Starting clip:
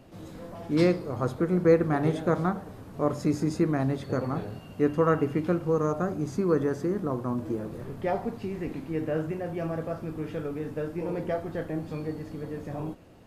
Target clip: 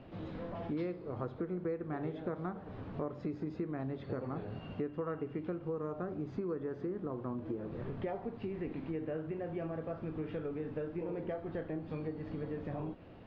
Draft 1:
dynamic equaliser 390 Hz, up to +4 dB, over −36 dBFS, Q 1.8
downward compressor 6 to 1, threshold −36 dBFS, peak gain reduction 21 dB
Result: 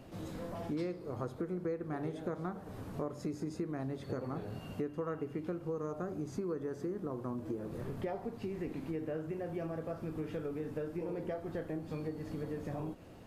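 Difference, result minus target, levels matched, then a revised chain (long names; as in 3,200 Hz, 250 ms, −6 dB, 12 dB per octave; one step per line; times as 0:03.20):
4,000 Hz band +3.5 dB
dynamic equaliser 390 Hz, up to +4 dB, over −36 dBFS, Q 1.8
low-pass filter 3,600 Hz 24 dB per octave
downward compressor 6 to 1, threshold −36 dBFS, peak gain reduction 21 dB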